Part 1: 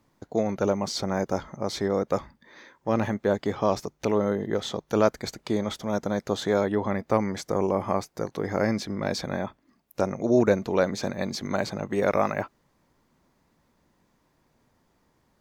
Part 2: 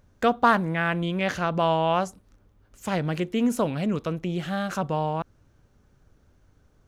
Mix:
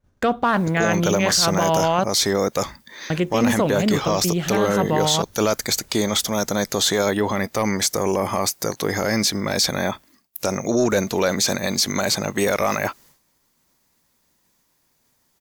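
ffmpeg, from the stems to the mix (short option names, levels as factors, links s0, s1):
-filter_complex "[0:a]crystalizer=i=7:c=0,adelay=450,volume=0.841[s0];[1:a]volume=0.891,asplit=3[s1][s2][s3];[s1]atrim=end=2.04,asetpts=PTS-STARTPTS,afade=t=out:st=2.036:d=0.004:c=hsin[s4];[s2]atrim=start=2.04:end=3.1,asetpts=PTS-STARTPTS,volume=0[s5];[s3]atrim=start=3.1,asetpts=PTS-STARTPTS,afade=t=in:d=0.004:c=hsin[s6];[s4][s5][s6]concat=n=3:v=0:a=1[s7];[s0][s7]amix=inputs=2:normalize=0,agate=range=0.0224:threshold=0.00251:ratio=3:detection=peak,acontrast=84,alimiter=limit=0.316:level=0:latency=1:release=19"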